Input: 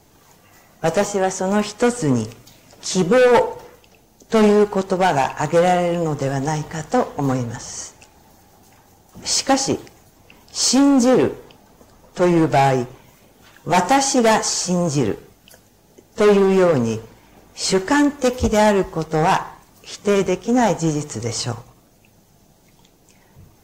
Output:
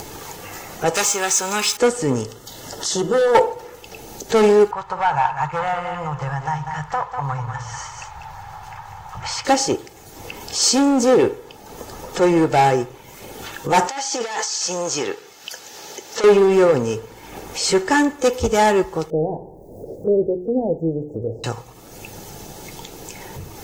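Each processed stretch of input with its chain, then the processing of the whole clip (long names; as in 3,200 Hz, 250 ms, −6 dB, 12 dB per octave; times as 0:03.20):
0:00.95–0:01.77: converter with a step at zero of −34 dBFS + tilt shelving filter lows −9.5 dB, about 1,100 Hz + comb filter 0.8 ms, depth 32%
0:02.27–0:03.35: mains-hum notches 60/120/180/240/300/360/420/480 Hz + downward compressor 2.5 to 1, threshold −16 dBFS + Butterworth band-reject 2,400 Hz, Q 3.4
0:04.71–0:09.45: drawn EQ curve 150 Hz 0 dB, 220 Hz −26 dB, 410 Hz −21 dB, 980 Hz +4 dB, 9,900 Hz −20 dB + single-tap delay 195 ms −9 dB
0:13.87–0:16.24: high-pass filter 1,100 Hz 6 dB per octave + high shelf with overshoot 7,600 Hz −6.5 dB, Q 1.5 + compressor whose output falls as the input rises −26 dBFS
0:19.10–0:21.44: spike at every zero crossing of −19.5 dBFS + elliptic low-pass filter 630 Hz, stop band 50 dB + mains-hum notches 60/120/180/240/300/360/420 Hz
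whole clip: low-shelf EQ 110 Hz −7 dB; comb filter 2.3 ms, depth 36%; upward compression, threshold −20 dBFS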